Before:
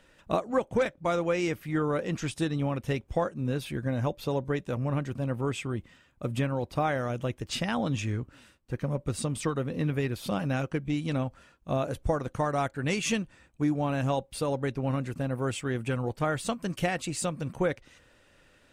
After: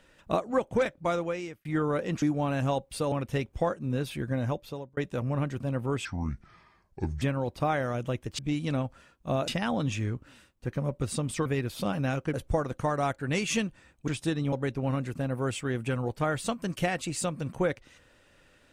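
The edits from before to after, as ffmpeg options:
-filter_complex "[0:a]asplit=13[a][b][c][d][e][f][g][h][i][j][k][l][m];[a]atrim=end=1.65,asetpts=PTS-STARTPTS,afade=t=out:st=1.07:d=0.58[n];[b]atrim=start=1.65:end=2.222,asetpts=PTS-STARTPTS,afade=t=in:d=0.004:c=hsin[o];[c]atrim=start=13.628:end=14.532[p];[d]atrim=start=2.668:end=4.52,asetpts=PTS-STARTPTS,afade=t=out:st=1.302:d=0.55[q];[e]atrim=start=4.52:end=5.604,asetpts=PTS-STARTPTS,afade=t=in:d=0.004:c=hsin[r];[f]atrim=start=5.6:end=6.37,asetpts=PTS-STARTPTS,asetrate=29106,aresample=44100[s];[g]atrim=start=6.366:end=7.542[t];[h]atrim=start=10.798:end=11.892[u];[i]atrim=start=7.538:end=9.522[v];[j]atrim=start=9.918:end=10.802[w];[k]atrim=start=11.888:end=13.632[x];[l]atrim=start=2.218:end=2.672[y];[m]atrim=start=14.528[z];[n][o]concat=n=2:v=0:a=1[aa];[aa][p]acrossfade=d=0.004:c1=hsin:c2=hsin[ab];[q][r]concat=n=2:v=0:a=1[ac];[ab][ac]acrossfade=d=0.004:c1=hsin:c2=hsin[ad];[ad][s]acrossfade=d=0.004:c1=hsin:c2=hsin[ae];[ae][t]acrossfade=d=0.004:c1=hsin:c2=hsin[af];[af][u]acrossfade=d=0.004:c1=hsin:c2=hsin[ag];[ag][v]acrossfade=d=0.004:c1=hsin:c2=hsin[ah];[ah][w]acrossfade=d=0.004:c1=hsin:c2=hsin[ai];[ai][x]acrossfade=d=0.004:c1=hsin:c2=hsin[aj];[aj][y]acrossfade=d=0.004:c1=hsin:c2=hsin[ak];[ak][z]acrossfade=d=0.004:c1=hsin:c2=hsin"

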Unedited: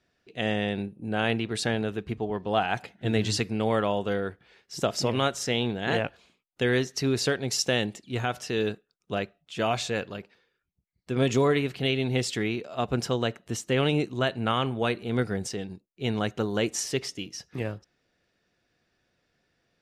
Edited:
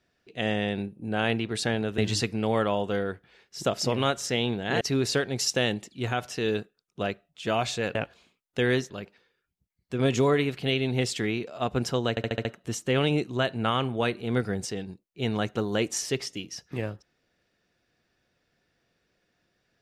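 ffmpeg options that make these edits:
-filter_complex "[0:a]asplit=10[a][b][c][d][e][f][g][h][i][j];[a]atrim=end=1.982[k];[b]atrim=start=3.148:end=5.982[l];[c]atrim=start=6.928:end=10.072[m];[d]atrim=start=5.978:end=6.932[n];[e]atrim=start=10.068:end=13.342[o];[f]atrim=start=13.268:end=13.342[p];[g]atrim=start=13.268:end=13.342[q];[h]atrim=start=13.268:end=13.342[r];[i]atrim=start=13.268:end=13.342[s];[j]atrim=start=13.268[t];[k][l]acrossfade=d=0.004:c1=hsin:c2=hsin[u];[u][m]acrossfade=d=0.004:c1=hsin:c2=hsin[v];[v][n]acrossfade=d=0.004:c1=hsin:c2=hsin[w];[w][o]acrossfade=d=0.004:c1=hsin:c2=hsin[x];[x][p]acrossfade=d=0.004:c1=hsin:c2=hsin[y];[y][q]acrossfade=d=0.004:c1=hsin:c2=hsin[z];[z][r]acrossfade=d=0.004:c1=hsin:c2=hsin[aa];[aa][s]acrossfade=d=0.004:c1=hsin:c2=hsin[ab];[ab][t]acrossfade=d=0.004:c1=hsin:c2=hsin"

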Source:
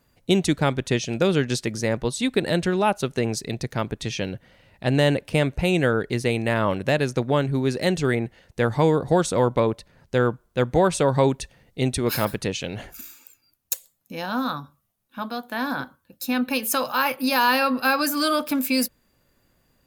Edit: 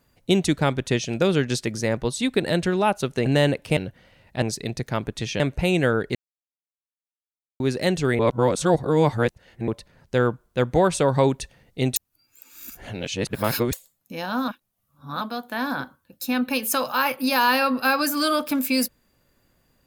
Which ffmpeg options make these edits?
-filter_complex "[0:a]asplit=13[a][b][c][d][e][f][g][h][i][j][k][l][m];[a]atrim=end=3.262[n];[b]atrim=start=4.888:end=5.402[o];[c]atrim=start=4.238:end=4.892[p];[d]atrim=start=3.258:end=4.242[q];[e]atrim=start=5.398:end=6.15,asetpts=PTS-STARTPTS,afade=t=out:st=0.748:d=0.004:c=hsin[r];[f]atrim=start=6.15:end=7.6,asetpts=PTS-STARTPTS,volume=0[s];[g]atrim=start=7.6:end=8.192,asetpts=PTS-STARTPTS,afade=t=in:d=0.004:c=hsin[t];[h]atrim=start=8.188:end=9.682,asetpts=PTS-STARTPTS,areverse[u];[i]atrim=start=9.678:end=11.962[v];[j]atrim=start=11.958:end=13.732,asetpts=PTS-STARTPTS,areverse[w];[k]atrim=start=13.728:end=14.482[x];[l]atrim=start=14.478:end=15.212,asetpts=PTS-STARTPTS,areverse[y];[m]atrim=start=15.208[z];[n][o]acrossfade=d=0.004:c1=hsin:c2=hsin[aa];[aa][p]acrossfade=d=0.004:c1=hsin:c2=hsin[ab];[ab][q]acrossfade=d=0.004:c1=hsin:c2=hsin[ac];[r][s][t]concat=n=3:v=0:a=1[ad];[ac][ad]acrossfade=d=0.004:c1=hsin:c2=hsin[ae];[ae][u]acrossfade=d=0.004:c1=hsin:c2=hsin[af];[af][v]acrossfade=d=0.004:c1=hsin:c2=hsin[ag];[ag][w]acrossfade=d=0.004:c1=hsin:c2=hsin[ah];[ah][x]acrossfade=d=0.004:c1=hsin:c2=hsin[ai];[ai][y]acrossfade=d=0.004:c1=hsin:c2=hsin[aj];[aj][z]acrossfade=d=0.004:c1=hsin:c2=hsin"

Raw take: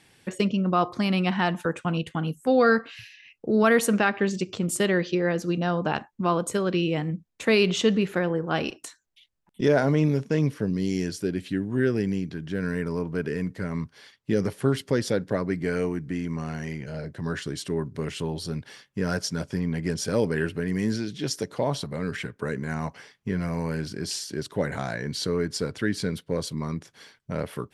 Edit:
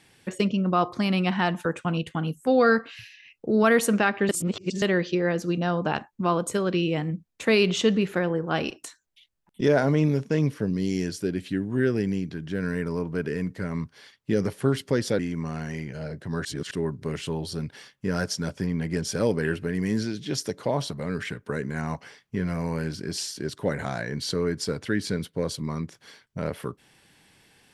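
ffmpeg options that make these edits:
-filter_complex "[0:a]asplit=6[a][b][c][d][e][f];[a]atrim=end=4.292[g];[b]atrim=start=4.288:end=4.822,asetpts=PTS-STARTPTS,areverse[h];[c]atrim=start=4.818:end=15.192[i];[d]atrim=start=16.118:end=17.382[j];[e]atrim=start=17.378:end=17.642,asetpts=PTS-STARTPTS,areverse[k];[f]atrim=start=17.638[l];[g][h]acrossfade=d=0.004:c1=hsin:c2=hsin[m];[m][i]acrossfade=d=0.004:c1=hsin:c2=hsin[n];[n][j]acrossfade=d=0.004:c1=hsin:c2=hsin[o];[o][k]acrossfade=d=0.004:c1=hsin:c2=hsin[p];[p][l]acrossfade=d=0.004:c1=hsin:c2=hsin"

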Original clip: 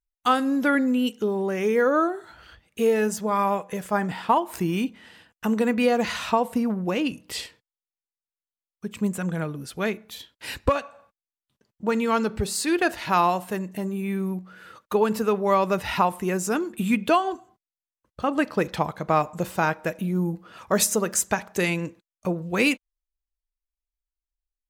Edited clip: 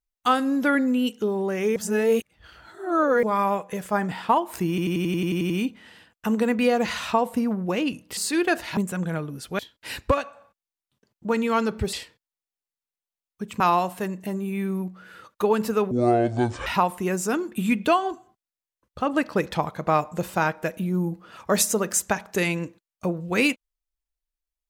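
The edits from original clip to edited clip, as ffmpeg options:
-filter_complex "[0:a]asplit=19[a][b][c][d][e][f][g][h][i][j][k][l][m][n][o][p][q][r][s];[a]atrim=end=1.762[t];[b]atrim=start=1.758:end=3.232,asetpts=PTS-STARTPTS,areverse[u];[c]atrim=start=3.228:end=4.782[v];[d]atrim=start=4.688:end=4.782[w];[e]atrim=start=4.688:end=4.782[x];[f]atrim=start=4.688:end=4.782[y];[g]atrim=start=4.688:end=4.782[z];[h]atrim=start=4.688:end=4.782[aa];[i]atrim=start=4.688:end=4.782[ab];[j]atrim=start=4.688:end=4.782[ac];[k]atrim=start=4.688:end=4.782[ad];[l]atrim=start=4.688:end=7.362[ae];[m]atrim=start=12.508:end=13.112[af];[n]atrim=start=9.028:end=9.852[ag];[o]atrim=start=10.168:end=12.512[ah];[p]atrim=start=7.358:end=9.032[ai];[q]atrim=start=13.108:end=15.424[aj];[r]atrim=start=15.42:end=15.88,asetpts=PTS-STARTPTS,asetrate=26901,aresample=44100[ak];[s]atrim=start=15.876[al];[t][u]acrossfade=d=0.004:c1=hsin:c2=hsin[am];[am][v]acrossfade=d=0.004:c1=hsin:c2=hsin[an];[an][w]acrossfade=d=0.004:c1=hsin:c2=hsin[ao];[ao][x]acrossfade=d=0.004:c1=hsin:c2=hsin[ap];[ap][y]acrossfade=d=0.004:c1=hsin:c2=hsin[aq];[aq][z]acrossfade=d=0.004:c1=hsin:c2=hsin[ar];[ar][aa]acrossfade=d=0.004:c1=hsin:c2=hsin[as];[as][ab]acrossfade=d=0.004:c1=hsin:c2=hsin[at];[at][ac]acrossfade=d=0.004:c1=hsin:c2=hsin[au];[au][ad]acrossfade=d=0.004:c1=hsin:c2=hsin[av];[av][ae]acrossfade=d=0.004:c1=hsin:c2=hsin[aw];[aw][af]acrossfade=d=0.004:c1=hsin:c2=hsin[ax];[ax][ag]acrossfade=d=0.004:c1=hsin:c2=hsin[ay];[ay][ah]acrossfade=d=0.004:c1=hsin:c2=hsin[az];[az][ai]acrossfade=d=0.004:c1=hsin:c2=hsin[ba];[ba][aj]acrossfade=d=0.004:c1=hsin:c2=hsin[bb];[bb][ak]acrossfade=d=0.004:c1=hsin:c2=hsin[bc];[bc][al]acrossfade=d=0.004:c1=hsin:c2=hsin"

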